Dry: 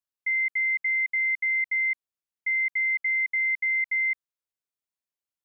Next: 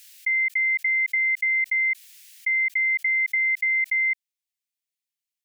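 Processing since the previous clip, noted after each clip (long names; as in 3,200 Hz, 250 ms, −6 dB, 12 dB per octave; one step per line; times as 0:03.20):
Butterworth high-pass 1,900 Hz 36 dB per octave
background raised ahead of every attack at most 31 dB per second
level +4 dB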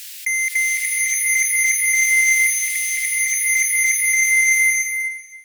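in parallel at −9.5 dB: sine wavefolder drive 13 dB, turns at −16.5 dBFS
on the sum: slow-attack reverb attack 730 ms, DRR −4.5 dB
level +4 dB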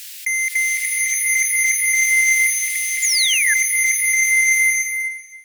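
sound drawn into the spectrogram fall, 0:03.02–0:03.54, 1,600–7,300 Hz −19 dBFS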